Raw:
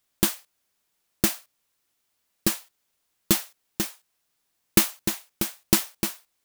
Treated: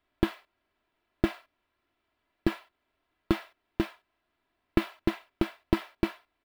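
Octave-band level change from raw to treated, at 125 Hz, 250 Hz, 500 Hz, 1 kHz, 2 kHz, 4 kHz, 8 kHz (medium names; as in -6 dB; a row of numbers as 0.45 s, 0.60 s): -2.5 dB, -1.0 dB, +0.5 dB, -2.0 dB, -5.0 dB, -12.5 dB, under -25 dB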